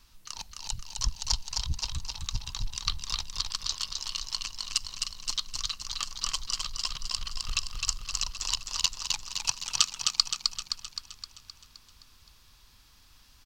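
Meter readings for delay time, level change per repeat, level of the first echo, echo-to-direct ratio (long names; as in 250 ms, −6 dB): 260 ms, −5.0 dB, −4.0 dB, −2.5 dB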